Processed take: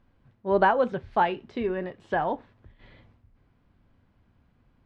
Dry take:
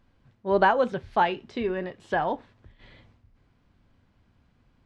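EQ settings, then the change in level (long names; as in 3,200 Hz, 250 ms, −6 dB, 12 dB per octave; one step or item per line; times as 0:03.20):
high-shelf EQ 4,300 Hz −12 dB
0.0 dB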